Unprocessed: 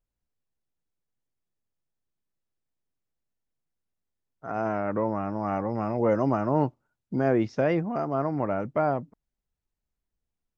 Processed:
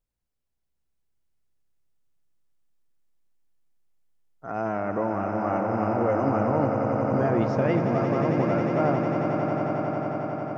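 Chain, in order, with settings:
brickwall limiter −15.5 dBFS, peak gain reduction 4 dB
on a send: echo that builds up and dies away 90 ms, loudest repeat 8, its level −9 dB

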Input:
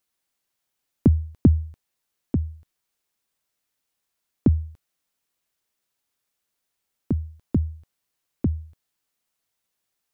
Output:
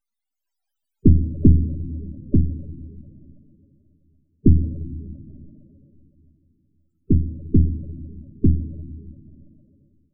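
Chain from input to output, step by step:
gain on one half-wave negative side −12 dB
mains-hum notches 60/120/180/240/300/360/420/480/540 Hz
convolution reverb RT60 3.3 s, pre-delay 8 ms, DRR 15 dB
automatic gain control gain up to 6.5 dB
in parallel at +0.5 dB: brickwall limiter −13.5 dBFS, peak gain reduction 10.5 dB
on the sum: spectral peaks only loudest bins 16

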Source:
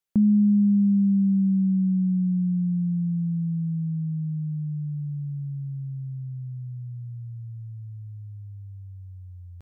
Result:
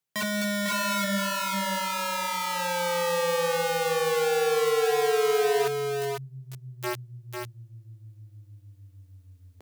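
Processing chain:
reversed playback
upward compression, threshold −23 dBFS
reversed playback
four-comb reverb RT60 0.49 s, combs from 33 ms, DRR 18 dB
wrap-around overflow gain 25 dB
high-pass filter sweep 120 Hz → 310 Hz, 0:01.11–0:01.68
on a send: single-tap delay 499 ms −5 dB

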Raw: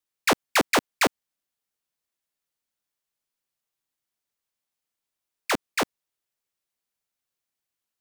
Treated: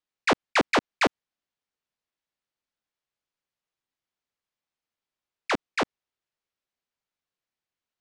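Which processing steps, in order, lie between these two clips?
one scale factor per block 7 bits
high-frequency loss of the air 110 metres

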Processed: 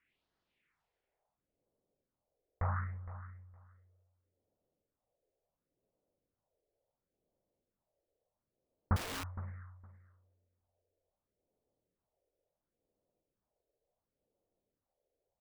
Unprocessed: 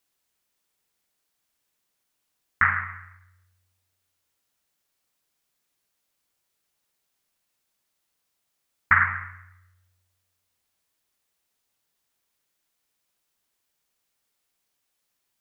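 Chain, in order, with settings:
low-pass filter sweep 2,200 Hz → 550 Hz, 0:00.81–0:01.39
all-pass phaser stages 4, 0.71 Hz, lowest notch 190–2,300 Hz
repeating echo 463 ms, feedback 16%, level −15 dB
0:08.96–0:09.36: wrap-around overflow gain 39 dB
level +2 dB

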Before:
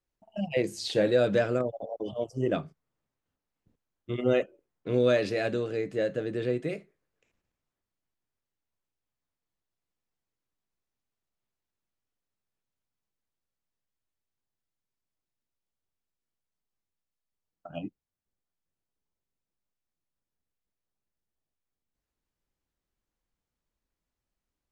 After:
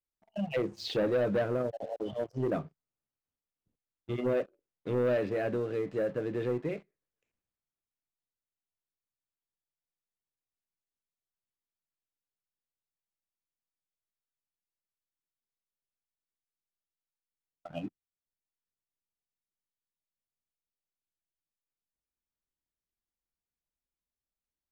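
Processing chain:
treble cut that deepens with the level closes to 1,700 Hz, closed at −25.5 dBFS
leveller curve on the samples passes 2
level −8.5 dB

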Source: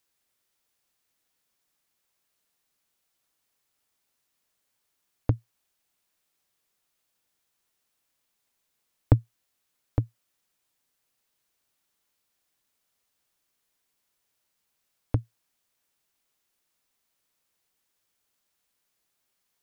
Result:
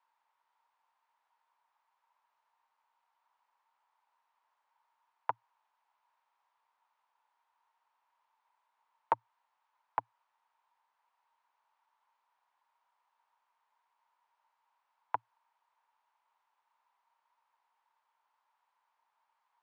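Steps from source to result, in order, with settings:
in parallel at 0 dB: brickwall limiter −12 dBFS, peak gain reduction 8 dB
on the sum: wave folding −10 dBFS
four-pole ladder band-pass 980 Hz, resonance 80%
level +9 dB

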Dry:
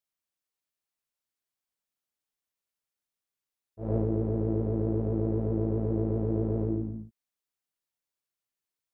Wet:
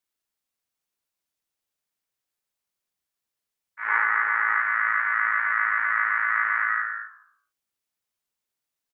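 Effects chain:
ring modulation 1,600 Hz
0:03.87–0:04.60: hollow resonant body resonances 430/850 Hz, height 13 dB
echo with shifted repeats 105 ms, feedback 37%, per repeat −60 Hz, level −14 dB
level +7 dB

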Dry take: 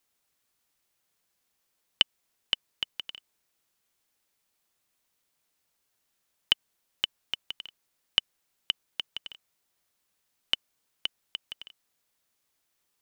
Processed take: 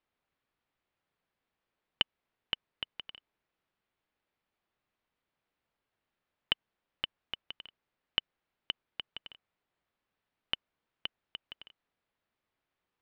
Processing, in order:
high-frequency loss of the air 370 metres

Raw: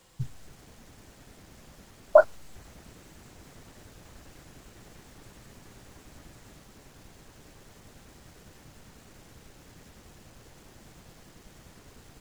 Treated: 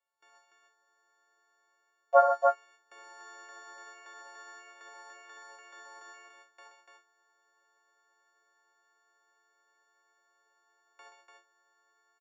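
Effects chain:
every partial snapped to a pitch grid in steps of 4 semitones
Chebyshev band-pass filter 360–7,500 Hz, order 4
noise gate with hold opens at −38 dBFS
three-way crossover with the lows and the highs turned down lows −15 dB, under 580 Hz, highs −21 dB, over 2,200 Hz
automatic gain control gain up to 11 dB
loudspeakers that aren't time-aligned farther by 25 metres −8 dB, 44 metres −8 dB, 100 metres −4 dB
level −6.5 dB

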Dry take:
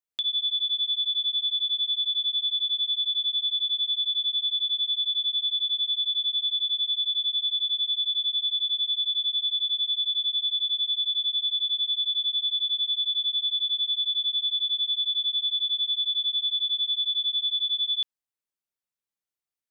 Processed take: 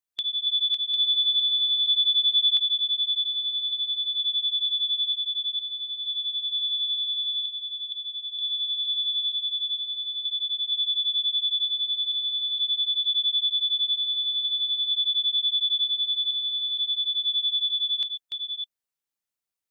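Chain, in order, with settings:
delay that plays each chunk backwards 466 ms, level −4 dB
harmonic and percussive parts rebalanced percussive +4 dB
high-shelf EQ 3,300 Hz +3 dB, from 0:00.94 +9 dB, from 0:02.57 +2.5 dB
level −3 dB

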